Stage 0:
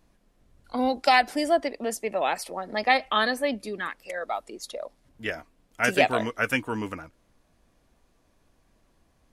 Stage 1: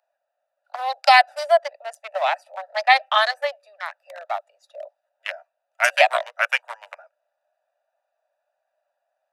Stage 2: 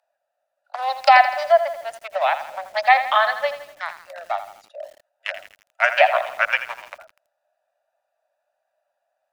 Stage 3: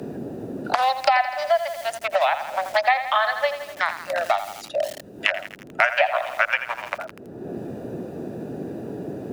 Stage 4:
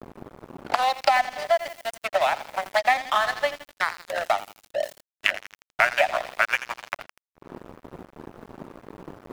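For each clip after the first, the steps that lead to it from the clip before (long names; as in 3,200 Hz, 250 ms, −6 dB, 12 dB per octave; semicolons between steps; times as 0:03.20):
adaptive Wiener filter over 41 samples; Butterworth high-pass 580 Hz 96 dB per octave; level +7 dB
treble cut that deepens with the level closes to 2,200 Hz, closed at −15 dBFS; feedback echo at a low word length 82 ms, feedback 55%, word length 7 bits, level −11 dB; level +1.5 dB
noise in a band 33–440 Hz −60 dBFS; multiband upward and downward compressor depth 100%; level −1 dB
dead-zone distortion −30.5 dBFS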